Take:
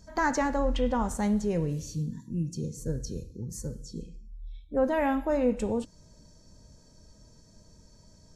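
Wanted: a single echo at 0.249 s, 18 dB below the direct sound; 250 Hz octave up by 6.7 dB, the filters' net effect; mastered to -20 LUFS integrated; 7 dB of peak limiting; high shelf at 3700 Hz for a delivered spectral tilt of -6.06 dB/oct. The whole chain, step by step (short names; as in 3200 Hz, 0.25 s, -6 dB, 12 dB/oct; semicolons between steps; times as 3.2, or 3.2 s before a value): bell 250 Hz +8 dB; high shelf 3700 Hz -4 dB; limiter -17.5 dBFS; echo 0.249 s -18 dB; gain +8 dB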